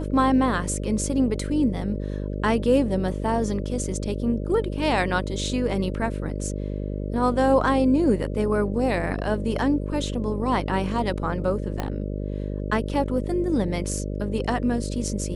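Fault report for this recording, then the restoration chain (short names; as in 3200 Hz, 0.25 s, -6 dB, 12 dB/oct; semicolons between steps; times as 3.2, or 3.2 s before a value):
buzz 50 Hz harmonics 12 -29 dBFS
11.8 pop -13 dBFS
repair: de-click; de-hum 50 Hz, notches 12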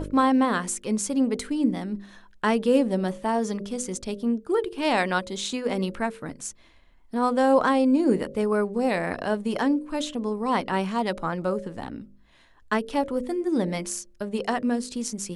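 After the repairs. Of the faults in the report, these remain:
11.8 pop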